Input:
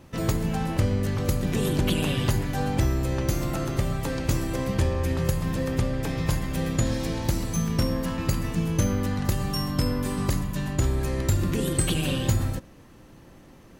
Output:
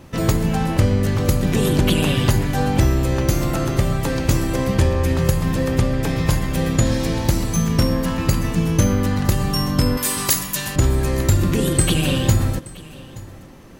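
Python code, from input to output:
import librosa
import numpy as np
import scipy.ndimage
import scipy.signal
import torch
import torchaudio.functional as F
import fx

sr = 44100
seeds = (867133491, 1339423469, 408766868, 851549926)

y = fx.tilt_eq(x, sr, slope=4.0, at=(9.97, 10.76))
y = y + 10.0 ** (-20.5 / 20.0) * np.pad(y, (int(875 * sr / 1000.0), 0))[:len(y)]
y = F.gain(torch.from_numpy(y), 7.0).numpy()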